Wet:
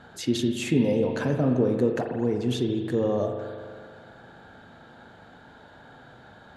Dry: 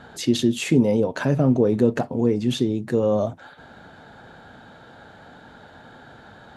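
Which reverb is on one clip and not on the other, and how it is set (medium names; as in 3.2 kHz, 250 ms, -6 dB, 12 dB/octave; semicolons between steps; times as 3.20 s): spring tank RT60 2 s, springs 40 ms, chirp 75 ms, DRR 4 dB; trim -5 dB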